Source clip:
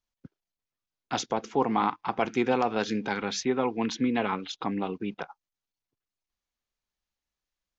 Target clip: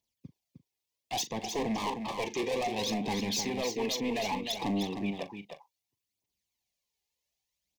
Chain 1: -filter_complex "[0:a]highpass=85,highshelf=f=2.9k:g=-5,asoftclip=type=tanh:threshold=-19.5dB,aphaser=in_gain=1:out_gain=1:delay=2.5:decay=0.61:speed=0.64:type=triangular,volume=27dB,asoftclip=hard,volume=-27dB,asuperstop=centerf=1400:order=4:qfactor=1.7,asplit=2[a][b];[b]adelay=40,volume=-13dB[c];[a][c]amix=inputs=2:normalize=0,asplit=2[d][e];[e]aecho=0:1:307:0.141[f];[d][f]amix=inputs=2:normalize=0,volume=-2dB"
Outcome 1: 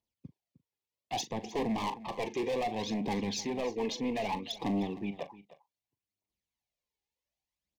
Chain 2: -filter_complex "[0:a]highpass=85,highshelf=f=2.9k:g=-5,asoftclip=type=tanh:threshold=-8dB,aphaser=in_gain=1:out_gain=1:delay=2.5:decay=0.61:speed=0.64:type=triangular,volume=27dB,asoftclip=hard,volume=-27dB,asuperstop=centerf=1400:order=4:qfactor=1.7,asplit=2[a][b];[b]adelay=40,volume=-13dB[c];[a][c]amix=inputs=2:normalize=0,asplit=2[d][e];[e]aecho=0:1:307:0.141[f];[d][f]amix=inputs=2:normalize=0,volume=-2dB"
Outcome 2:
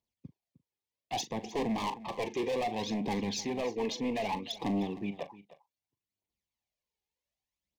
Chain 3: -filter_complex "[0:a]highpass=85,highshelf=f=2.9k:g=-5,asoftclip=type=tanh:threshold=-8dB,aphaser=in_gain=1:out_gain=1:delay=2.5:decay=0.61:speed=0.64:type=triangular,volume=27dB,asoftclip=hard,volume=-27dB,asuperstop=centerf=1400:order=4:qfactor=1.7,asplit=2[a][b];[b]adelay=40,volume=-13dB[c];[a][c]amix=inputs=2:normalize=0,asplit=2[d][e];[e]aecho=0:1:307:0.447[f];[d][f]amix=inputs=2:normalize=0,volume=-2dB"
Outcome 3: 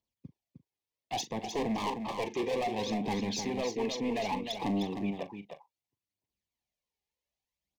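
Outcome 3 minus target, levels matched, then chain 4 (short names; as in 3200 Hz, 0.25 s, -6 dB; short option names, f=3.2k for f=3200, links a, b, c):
8000 Hz band -4.5 dB
-filter_complex "[0:a]highpass=85,highshelf=f=2.9k:g=6.5,asoftclip=type=tanh:threshold=-8dB,aphaser=in_gain=1:out_gain=1:delay=2.5:decay=0.61:speed=0.64:type=triangular,volume=27dB,asoftclip=hard,volume=-27dB,asuperstop=centerf=1400:order=4:qfactor=1.7,asplit=2[a][b];[b]adelay=40,volume=-13dB[c];[a][c]amix=inputs=2:normalize=0,asplit=2[d][e];[e]aecho=0:1:307:0.447[f];[d][f]amix=inputs=2:normalize=0,volume=-2dB"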